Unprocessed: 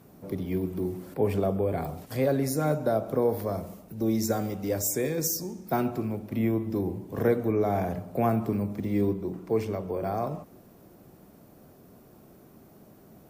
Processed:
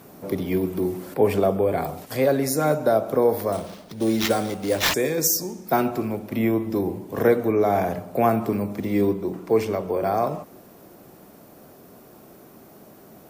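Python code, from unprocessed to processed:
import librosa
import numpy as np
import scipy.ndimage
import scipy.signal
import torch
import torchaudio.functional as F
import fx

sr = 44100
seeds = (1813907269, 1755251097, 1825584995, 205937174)

p1 = fx.low_shelf(x, sr, hz=210.0, db=-11.0)
p2 = fx.rider(p1, sr, range_db=5, speed_s=2.0)
p3 = p1 + (p2 * 10.0 ** (2.0 / 20.0))
p4 = fx.sample_hold(p3, sr, seeds[0], rate_hz=9300.0, jitter_pct=0, at=(3.52, 4.94))
y = p4 * 10.0 ** (1.0 / 20.0)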